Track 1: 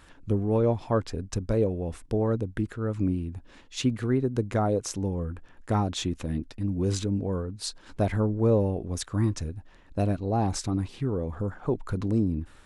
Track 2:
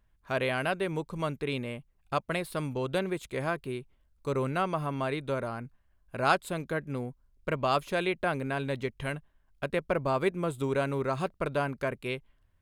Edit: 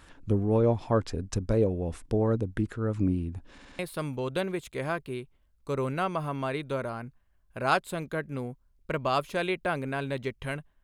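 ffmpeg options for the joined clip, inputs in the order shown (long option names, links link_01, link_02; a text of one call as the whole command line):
ffmpeg -i cue0.wav -i cue1.wav -filter_complex "[0:a]apad=whole_dur=10.83,atrim=end=10.83,asplit=4[link_01][link_02][link_03][link_04];[link_01]atrim=end=3.582[link_05];[link_02]atrim=start=3.508:end=3.582[link_06];[link_03]atrim=start=3.508:end=3.582[link_07];[link_04]atrim=start=3.508:end=3.582[link_08];[1:a]atrim=start=2.368:end=9.41[link_09];[link_05][link_06]acrossfade=duration=0.004:curve1=hsin:curve2=hsin[link_10];[link_10][link_07]acrossfade=duration=0.004:curve1=hsin:curve2=hsin[link_11];[link_11][link_08]acrossfade=duration=0.004:curve1=hsin:curve2=hsin[link_12];[link_12][link_09]acrossfade=duration=0.004:curve1=hsin:curve2=hsin" out.wav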